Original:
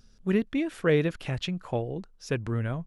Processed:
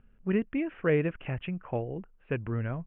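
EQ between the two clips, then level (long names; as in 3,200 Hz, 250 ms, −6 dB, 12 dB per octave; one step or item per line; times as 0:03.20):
Butterworth low-pass 2,900 Hz 72 dB per octave
−2.5 dB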